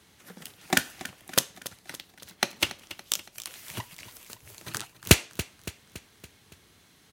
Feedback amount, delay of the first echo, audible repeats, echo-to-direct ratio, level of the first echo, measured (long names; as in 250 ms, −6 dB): 53%, 282 ms, 4, −14.5 dB, −16.0 dB